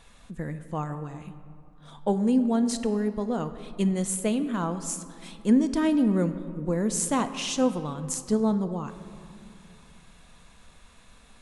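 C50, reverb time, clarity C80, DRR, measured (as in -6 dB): 11.5 dB, 2.5 s, 12.5 dB, 9.5 dB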